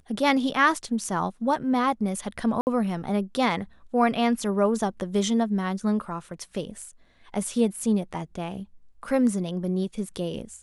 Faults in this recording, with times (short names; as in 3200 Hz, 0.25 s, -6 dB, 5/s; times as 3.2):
2.61–2.67 gap 59 ms